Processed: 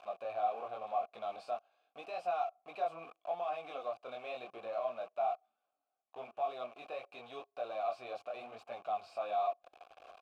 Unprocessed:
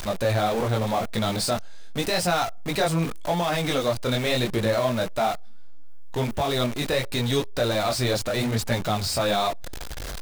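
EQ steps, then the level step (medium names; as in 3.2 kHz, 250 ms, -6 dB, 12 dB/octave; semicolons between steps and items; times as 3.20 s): vowel filter a; tone controls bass -8 dB, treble -11 dB; treble shelf 5.1 kHz +8 dB; -5.5 dB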